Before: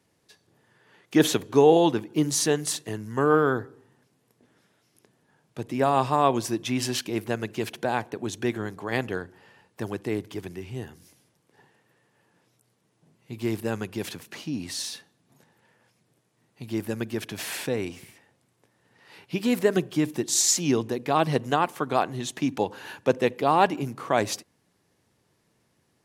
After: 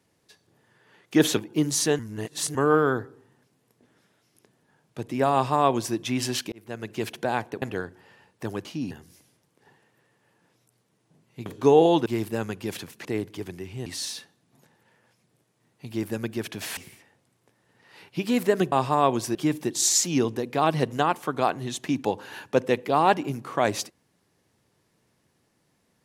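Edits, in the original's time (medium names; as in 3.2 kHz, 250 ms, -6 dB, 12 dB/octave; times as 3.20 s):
1.37–1.97 s: move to 13.38 s
2.59–3.15 s: reverse
5.93–6.56 s: copy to 19.88 s
7.12–7.62 s: fade in linear
8.22–8.99 s: delete
10.02–10.83 s: swap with 14.37–14.63 s
17.54–17.93 s: delete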